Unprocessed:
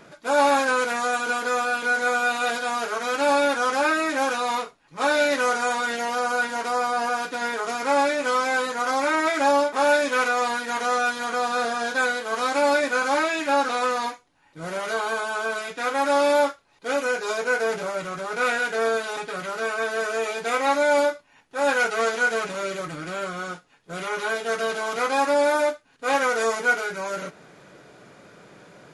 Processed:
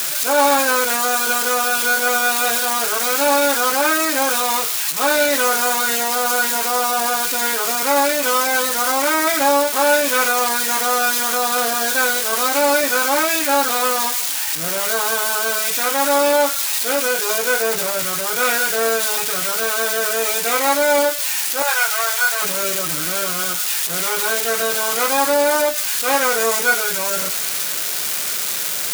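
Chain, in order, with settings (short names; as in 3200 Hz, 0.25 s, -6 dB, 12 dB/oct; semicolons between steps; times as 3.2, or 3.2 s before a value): switching spikes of -14 dBFS; 21.62–22.42 HPF 700 Hz 24 dB/oct; gain +3.5 dB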